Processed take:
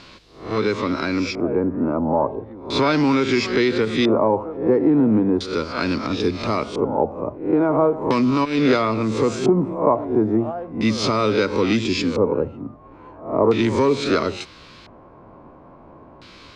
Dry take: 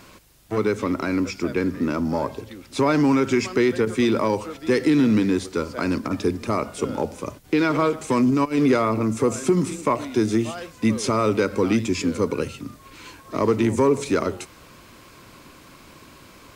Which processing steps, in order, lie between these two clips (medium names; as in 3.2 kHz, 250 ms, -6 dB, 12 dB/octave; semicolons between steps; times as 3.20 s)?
reverse spectral sustain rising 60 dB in 0.46 s; LFO low-pass square 0.37 Hz 780–4200 Hz